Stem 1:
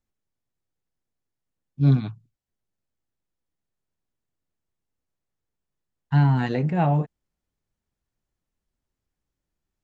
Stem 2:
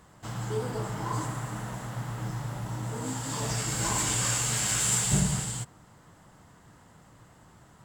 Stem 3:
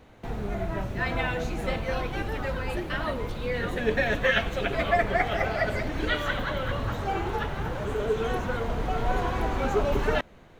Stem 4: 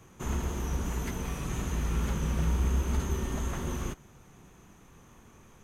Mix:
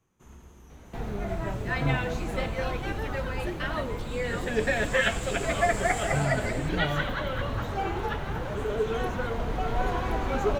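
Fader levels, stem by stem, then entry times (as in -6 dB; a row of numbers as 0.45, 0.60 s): -11.0, -14.0, -1.0, -18.5 dB; 0.00, 1.05, 0.70, 0.00 s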